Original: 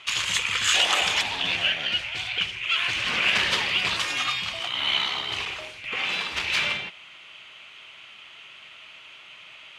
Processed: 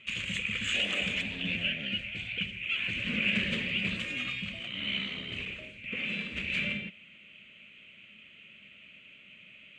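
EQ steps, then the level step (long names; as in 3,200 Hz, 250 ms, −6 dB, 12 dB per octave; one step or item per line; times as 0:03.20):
drawn EQ curve 140 Hz 0 dB, 210 Hz +11 dB, 350 Hz −6 dB, 570 Hz −5 dB, 840 Hz −27 dB, 2,500 Hz −4 dB, 5,300 Hz −26 dB, 7,600 Hz −14 dB, 11,000 Hz −25 dB
0.0 dB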